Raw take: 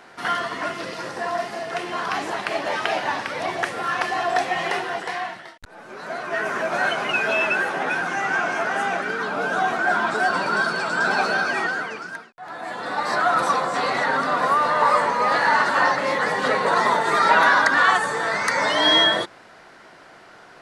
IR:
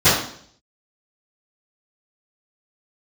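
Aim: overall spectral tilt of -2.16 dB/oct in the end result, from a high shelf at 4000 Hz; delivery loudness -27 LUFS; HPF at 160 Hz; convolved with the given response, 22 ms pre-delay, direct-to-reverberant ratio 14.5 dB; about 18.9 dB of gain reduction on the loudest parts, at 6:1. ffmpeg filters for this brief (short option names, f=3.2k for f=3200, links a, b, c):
-filter_complex "[0:a]highpass=160,highshelf=f=4k:g=3.5,acompressor=threshold=-33dB:ratio=6,asplit=2[a][b];[1:a]atrim=start_sample=2205,adelay=22[c];[b][c]afir=irnorm=-1:irlink=0,volume=-39dB[d];[a][d]amix=inputs=2:normalize=0,volume=7.5dB"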